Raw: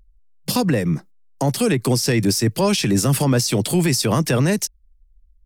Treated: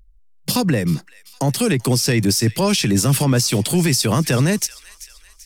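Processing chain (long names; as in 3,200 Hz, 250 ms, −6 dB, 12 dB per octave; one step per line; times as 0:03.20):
parametric band 540 Hz −3.5 dB 2.6 octaves
delay with a high-pass on its return 387 ms, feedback 48%, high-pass 1,900 Hz, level −16 dB
level +2.5 dB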